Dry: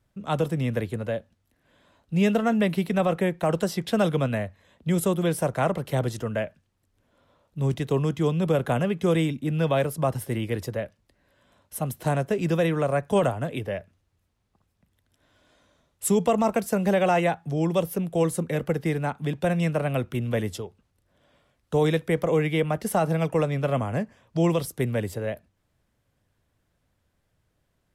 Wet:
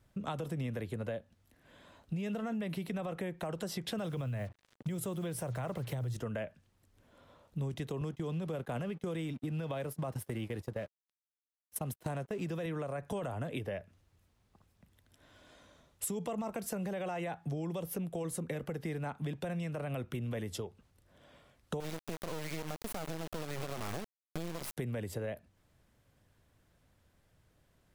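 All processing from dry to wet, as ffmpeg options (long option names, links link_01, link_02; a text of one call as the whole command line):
ffmpeg -i in.wav -filter_complex "[0:a]asettb=1/sr,asplit=3[link_01][link_02][link_03];[link_01]atrim=end=3.984[link_04];[link_02]atrim=start=3.98:end=6.17,asetpts=PTS-STARTPTS,afade=type=in:duration=0.004:curve=qsin,afade=type=out:start_time=2.186:duration=0.004:curve=qsin,equalizer=frequency=120:width=5.5:gain=13.5,acrusher=bits=7:mix=0:aa=0.5[link_05];[link_03]atrim=start=6.166[link_06];[link_04][link_05]acrossfade=duration=0.004:curve1=hsin:curve2=qsin[link_07];[link_07][link_06]acrossfade=duration=0.004:curve1=qsin:curve2=hsin,asettb=1/sr,asplit=3[link_08][link_09][link_10];[link_08]atrim=end=8.014[link_11];[link_09]atrim=start=8.01:end=12.66,asetpts=PTS-STARTPTS,afade=type=in:duration=0.004:curve=qsin,afade=type=out:start_time=4.646:duration=0.004:curve=qsin,highpass=frequency=44:width=0.5412,highpass=frequency=44:width=1.3066,aeval=exprs='sgn(val(0))*max(abs(val(0))-0.00335,0)':channel_layout=same,agate=range=-15dB:threshold=-36dB:ratio=16:release=100:detection=peak[link_12];[link_10]atrim=start=12.656[link_13];[link_11][link_12]acrossfade=duration=0.004:curve1=hsin:curve2=qsin[link_14];[link_14][link_13]acrossfade=duration=0.004:curve1=qsin:curve2=hsin,asettb=1/sr,asplit=3[link_15][link_16][link_17];[link_15]atrim=end=21.804[link_18];[link_16]atrim=start=21.8:end=24.77,asetpts=PTS-STARTPTS,afade=type=in:duration=0.004:curve=qsin,afade=type=out:start_time=2.966:duration=0.004:curve=qsin,acompressor=threshold=-30dB:ratio=2.5:attack=3.2:release=140:knee=1:detection=peak,acrusher=bits=3:dc=4:mix=0:aa=0.000001[link_19];[link_17]atrim=start=24.766[link_20];[link_18][link_19]acrossfade=duration=0.004:curve1=hsin:curve2=qsin[link_21];[link_21][link_20]acrossfade=duration=0.004:curve1=qsin:curve2=hsin,alimiter=limit=-20.5dB:level=0:latency=1:release=60,acompressor=threshold=-38dB:ratio=5,volume=2.5dB" out.wav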